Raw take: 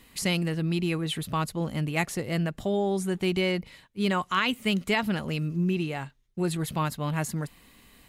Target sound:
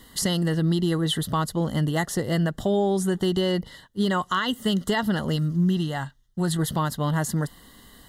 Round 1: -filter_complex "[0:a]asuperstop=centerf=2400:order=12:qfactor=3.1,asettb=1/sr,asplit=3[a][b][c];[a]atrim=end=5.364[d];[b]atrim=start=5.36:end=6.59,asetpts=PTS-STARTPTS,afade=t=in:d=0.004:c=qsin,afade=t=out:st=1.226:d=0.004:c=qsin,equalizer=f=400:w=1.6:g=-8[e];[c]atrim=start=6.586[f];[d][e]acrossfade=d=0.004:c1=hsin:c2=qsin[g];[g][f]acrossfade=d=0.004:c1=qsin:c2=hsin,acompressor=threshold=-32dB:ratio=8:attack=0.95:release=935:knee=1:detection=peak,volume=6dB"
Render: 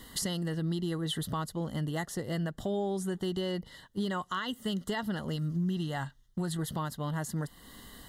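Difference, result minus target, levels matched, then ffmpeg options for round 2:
compressor: peak gain reduction +9.5 dB
-filter_complex "[0:a]asuperstop=centerf=2400:order=12:qfactor=3.1,asettb=1/sr,asplit=3[a][b][c];[a]atrim=end=5.364[d];[b]atrim=start=5.36:end=6.59,asetpts=PTS-STARTPTS,afade=t=in:d=0.004:c=qsin,afade=t=out:st=1.226:d=0.004:c=qsin,equalizer=f=400:w=1.6:g=-8[e];[c]atrim=start=6.586[f];[d][e]acrossfade=d=0.004:c1=hsin:c2=qsin[g];[g][f]acrossfade=d=0.004:c1=qsin:c2=hsin,acompressor=threshold=-21dB:ratio=8:attack=0.95:release=935:knee=1:detection=peak,volume=6dB"

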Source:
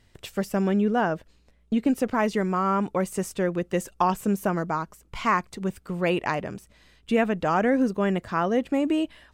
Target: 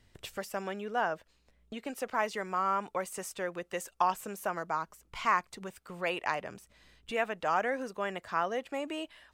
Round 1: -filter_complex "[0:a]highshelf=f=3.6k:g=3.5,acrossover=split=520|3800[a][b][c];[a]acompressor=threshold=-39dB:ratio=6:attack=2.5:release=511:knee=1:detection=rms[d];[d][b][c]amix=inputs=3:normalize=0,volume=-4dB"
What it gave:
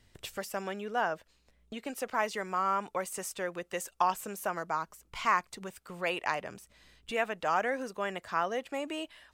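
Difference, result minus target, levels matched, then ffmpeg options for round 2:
8000 Hz band +2.5 dB
-filter_complex "[0:a]acrossover=split=520|3800[a][b][c];[a]acompressor=threshold=-39dB:ratio=6:attack=2.5:release=511:knee=1:detection=rms[d];[d][b][c]amix=inputs=3:normalize=0,volume=-4dB"

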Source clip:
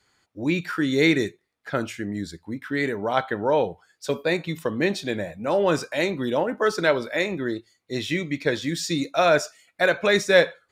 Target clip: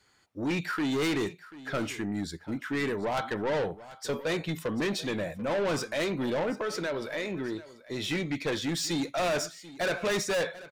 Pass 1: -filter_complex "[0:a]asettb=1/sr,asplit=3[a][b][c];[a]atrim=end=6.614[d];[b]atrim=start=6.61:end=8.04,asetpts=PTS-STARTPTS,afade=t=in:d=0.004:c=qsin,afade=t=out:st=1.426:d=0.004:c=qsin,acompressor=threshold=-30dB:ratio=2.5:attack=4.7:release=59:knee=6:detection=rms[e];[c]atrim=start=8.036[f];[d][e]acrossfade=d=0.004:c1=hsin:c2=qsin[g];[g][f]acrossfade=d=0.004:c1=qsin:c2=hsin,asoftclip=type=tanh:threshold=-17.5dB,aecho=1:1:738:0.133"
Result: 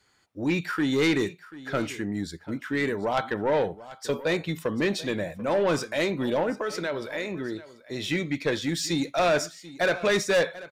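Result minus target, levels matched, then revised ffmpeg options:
soft clip: distortion -6 dB
-filter_complex "[0:a]asettb=1/sr,asplit=3[a][b][c];[a]atrim=end=6.614[d];[b]atrim=start=6.61:end=8.04,asetpts=PTS-STARTPTS,afade=t=in:d=0.004:c=qsin,afade=t=out:st=1.426:d=0.004:c=qsin,acompressor=threshold=-30dB:ratio=2.5:attack=4.7:release=59:knee=6:detection=rms[e];[c]atrim=start=8.036[f];[d][e]acrossfade=d=0.004:c1=hsin:c2=qsin[g];[g][f]acrossfade=d=0.004:c1=qsin:c2=hsin,asoftclip=type=tanh:threshold=-25.5dB,aecho=1:1:738:0.133"

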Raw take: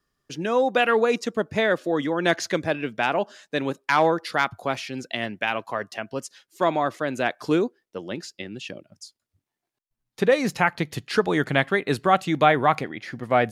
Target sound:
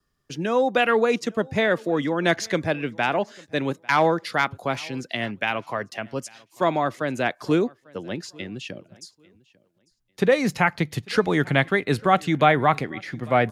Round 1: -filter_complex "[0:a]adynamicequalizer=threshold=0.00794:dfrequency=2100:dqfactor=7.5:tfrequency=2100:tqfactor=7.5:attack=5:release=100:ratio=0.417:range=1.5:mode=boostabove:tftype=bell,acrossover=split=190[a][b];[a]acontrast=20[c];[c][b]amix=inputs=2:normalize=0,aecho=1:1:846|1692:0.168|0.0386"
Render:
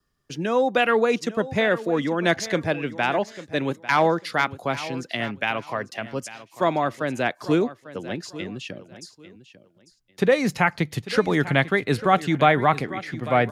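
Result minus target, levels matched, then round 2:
echo-to-direct +5 dB
-filter_complex "[0:a]adynamicequalizer=threshold=0.00794:dfrequency=2100:dqfactor=7.5:tfrequency=2100:tqfactor=7.5:attack=5:release=100:ratio=0.417:range=1.5:mode=boostabove:tftype=bell,acrossover=split=190[a][b];[a]acontrast=20[c];[c][b]amix=inputs=2:normalize=0,aecho=1:1:846|1692:0.0562|0.0129"

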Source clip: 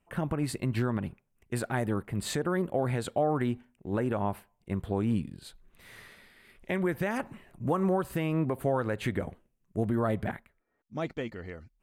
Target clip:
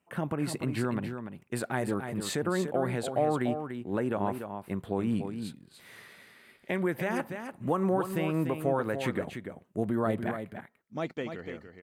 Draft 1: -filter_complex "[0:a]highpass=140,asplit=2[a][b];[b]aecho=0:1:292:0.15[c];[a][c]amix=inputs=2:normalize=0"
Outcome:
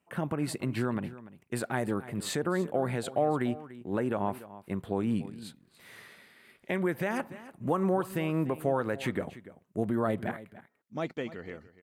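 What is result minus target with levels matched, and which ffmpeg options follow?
echo-to-direct -8.5 dB
-filter_complex "[0:a]highpass=140,asplit=2[a][b];[b]aecho=0:1:292:0.398[c];[a][c]amix=inputs=2:normalize=0"

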